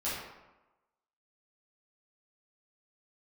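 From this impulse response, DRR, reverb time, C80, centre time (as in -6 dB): -11.0 dB, 1.1 s, 3.5 dB, 72 ms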